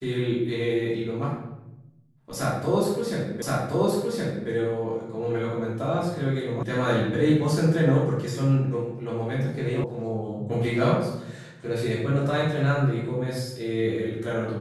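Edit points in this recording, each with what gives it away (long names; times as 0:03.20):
0:03.42: the same again, the last 1.07 s
0:06.63: cut off before it has died away
0:09.84: cut off before it has died away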